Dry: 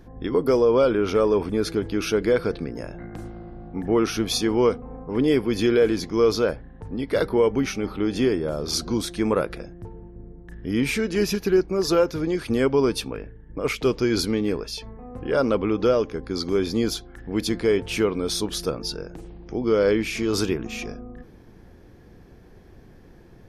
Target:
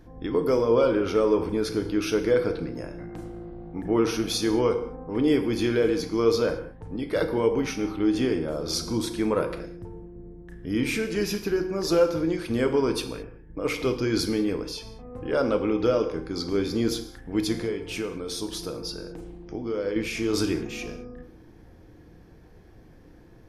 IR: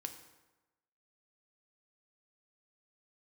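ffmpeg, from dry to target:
-filter_complex "[0:a]asettb=1/sr,asplit=3[s0][s1][s2];[s0]atrim=end=17.644[s3];[s1]atrim=start=17.64:end=19.96,asetpts=PTS-STARTPTS,afade=t=in:d=0.004:c=qsin,afade=t=out:st=2.316:d=0.004:c=qsin,acompressor=threshold=0.0398:ratio=2.5[s4];[s2]atrim=start=19.956[s5];[s3][s4]acrossfade=d=0.004:c1=hsin:c2=qsin[s6];[s6][s5]acrossfade=d=0.004:c1=qsin:c2=hsin[s7];[1:a]atrim=start_sample=2205,afade=t=out:st=0.27:d=0.01,atrim=end_sample=12348[s8];[s7][s8]afir=irnorm=-1:irlink=0"

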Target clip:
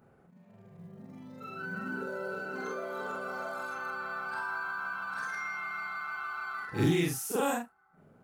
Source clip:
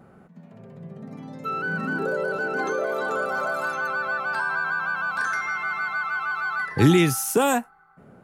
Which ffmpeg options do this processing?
-af "afftfilt=real='re':imag='-im':win_size=4096:overlap=0.75,acrusher=bits=9:mode=log:mix=0:aa=0.000001,volume=0.531"

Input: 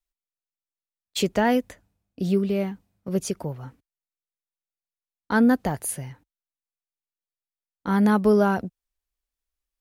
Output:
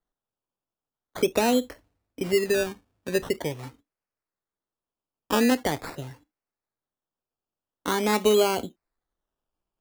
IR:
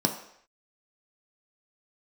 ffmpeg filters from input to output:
-filter_complex "[0:a]acrossover=split=300|1300[s0][s1][s2];[s0]acompressor=threshold=0.0398:ratio=4[s3];[s1]acompressor=threshold=0.0708:ratio=4[s4];[s2]acompressor=threshold=0.0126:ratio=4[s5];[s3][s4][s5]amix=inputs=3:normalize=0,asplit=2[s6][s7];[1:a]atrim=start_sample=2205,afade=t=out:st=0.17:d=0.01,atrim=end_sample=7938,asetrate=61740,aresample=44100[s8];[s7][s8]afir=irnorm=-1:irlink=0,volume=0.133[s9];[s6][s9]amix=inputs=2:normalize=0,acrusher=samples=17:mix=1:aa=0.000001:lfo=1:lforange=10.2:lforate=0.44"

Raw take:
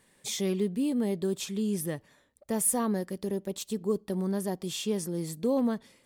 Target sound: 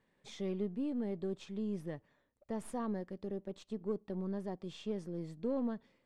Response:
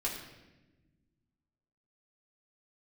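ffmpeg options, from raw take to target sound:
-af "aeval=exprs='if(lt(val(0),0),0.708*val(0),val(0))':c=same,adynamicsmooth=sensitivity=2:basefreq=6900,aemphasis=mode=reproduction:type=75kf,volume=0.447"

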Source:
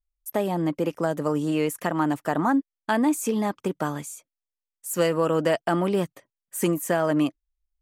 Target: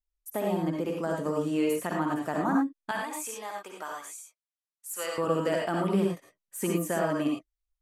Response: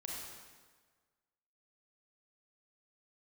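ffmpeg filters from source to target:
-filter_complex "[0:a]asettb=1/sr,asplit=3[s0][s1][s2];[s0]atrim=end=2.914[s3];[s1]atrim=start=2.91:end=5.18,asetpts=PTS-STARTPTS,afade=t=in:d=0.004:c=qsin,afade=t=out:st=2.266:d=0.004:c=qsin,highpass=790[s4];[s2]atrim=start=5.176[s5];[s3][s4]acrossfade=d=0.004:c1=hsin:c2=qsin[s6];[s6][s5]acrossfade=d=0.004:c1=qsin:c2=hsin[s7];[1:a]atrim=start_sample=2205,atrim=end_sample=3087,asetrate=26019,aresample=44100[s8];[s7][s8]afir=irnorm=-1:irlink=0,volume=0.631"

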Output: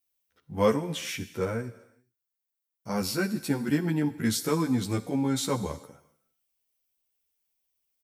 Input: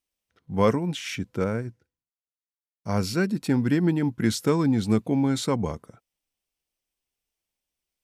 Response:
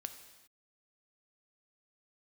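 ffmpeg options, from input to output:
-filter_complex "[0:a]asplit=2[s0][s1];[s1]aemphasis=mode=production:type=bsi[s2];[1:a]atrim=start_sample=2205[s3];[s2][s3]afir=irnorm=-1:irlink=0,volume=1.12[s4];[s0][s4]amix=inputs=2:normalize=0,asplit=2[s5][s6];[s6]adelay=11.8,afreqshift=0.34[s7];[s5][s7]amix=inputs=2:normalize=1,volume=0.631"

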